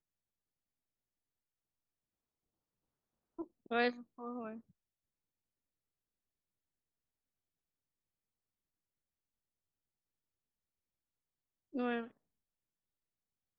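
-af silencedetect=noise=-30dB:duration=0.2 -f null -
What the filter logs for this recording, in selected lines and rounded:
silence_start: 0.00
silence_end: 3.72 | silence_duration: 3.72
silence_start: 3.89
silence_end: 11.79 | silence_duration: 7.90
silence_start: 12.00
silence_end: 13.59 | silence_duration: 1.59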